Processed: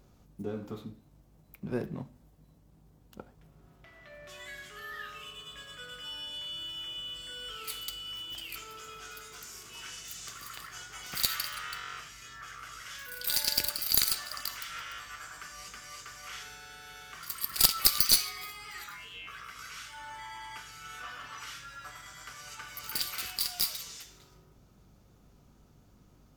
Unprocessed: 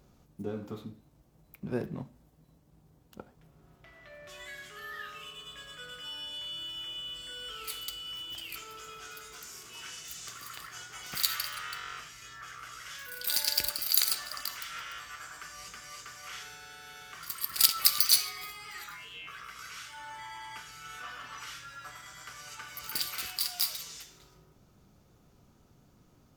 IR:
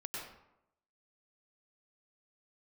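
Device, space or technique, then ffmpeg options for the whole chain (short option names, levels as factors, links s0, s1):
valve amplifier with mains hum: -af "aeval=exprs='(tanh(2.24*val(0)+0.6)-tanh(0.6))/2.24':c=same,aeval=exprs='val(0)+0.000501*(sin(2*PI*50*n/s)+sin(2*PI*2*50*n/s)/2+sin(2*PI*3*50*n/s)/3+sin(2*PI*4*50*n/s)/4+sin(2*PI*5*50*n/s)/5)':c=same,volume=1.41"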